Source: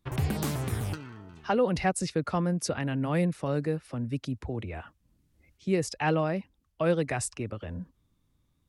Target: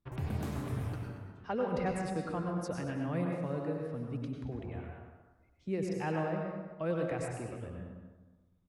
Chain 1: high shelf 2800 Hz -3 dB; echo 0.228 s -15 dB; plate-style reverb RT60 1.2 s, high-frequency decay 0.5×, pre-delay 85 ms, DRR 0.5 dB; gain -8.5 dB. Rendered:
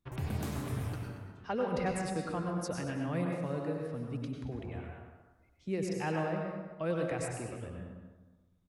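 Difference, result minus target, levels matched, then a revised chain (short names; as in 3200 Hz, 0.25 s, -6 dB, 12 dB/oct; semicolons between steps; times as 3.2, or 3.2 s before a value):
4000 Hz band +4.0 dB
high shelf 2800 Hz -9.5 dB; echo 0.228 s -15 dB; plate-style reverb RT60 1.2 s, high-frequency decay 0.5×, pre-delay 85 ms, DRR 0.5 dB; gain -8.5 dB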